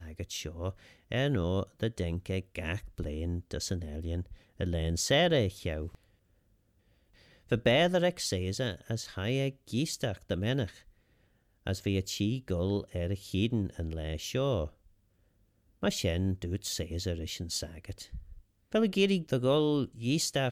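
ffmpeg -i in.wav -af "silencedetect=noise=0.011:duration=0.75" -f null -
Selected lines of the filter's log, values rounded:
silence_start: 5.95
silence_end: 7.51 | silence_duration: 1.56
silence_start: 10.69
silence_end: 11.67 | silence_duration: 0.97
silence_start: 14.67
silence_end: 15.83 | silence_duration: 1.16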